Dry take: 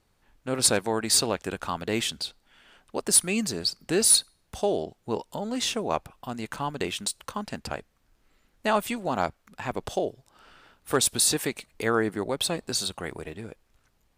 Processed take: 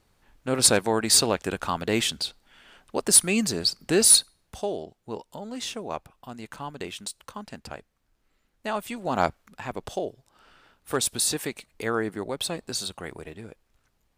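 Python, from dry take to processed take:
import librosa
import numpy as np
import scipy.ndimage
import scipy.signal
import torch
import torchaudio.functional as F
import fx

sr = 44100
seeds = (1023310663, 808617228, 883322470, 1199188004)

y = fx.gain(x, sr, db=fx.line((4.14, 3.0), (4.79, -5.5), (8.86, -5.5), (9.26, 4.5), (9.67, -2.5)))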